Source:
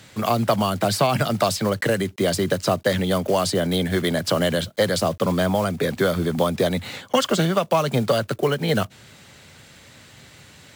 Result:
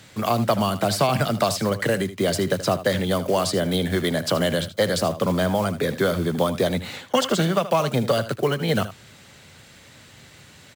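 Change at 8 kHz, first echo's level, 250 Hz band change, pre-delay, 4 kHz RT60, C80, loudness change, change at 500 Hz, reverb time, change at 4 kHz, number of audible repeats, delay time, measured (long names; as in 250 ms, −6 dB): −1.0 dB, −13.5 dB, −1.0 dB, no reverb audible, no reverb audible, no reverb audible, −1.0 dB, −1.0 dB, no reverb audible, −1.0 dB, 1, 78 ms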